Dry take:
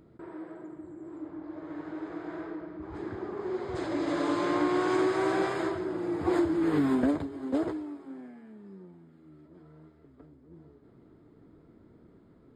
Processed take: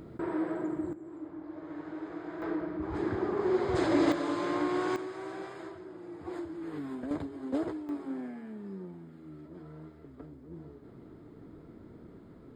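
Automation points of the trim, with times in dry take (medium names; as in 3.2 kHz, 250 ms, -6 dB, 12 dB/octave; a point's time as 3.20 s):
+10 dB
from 0.93 s -2 dB
from 2.42 s +5.5 dB
from 4.12 s -3.5 dB
from 4.96 s -13 dB
from 7.11 s -3 dB
from 7.89 s +6 dB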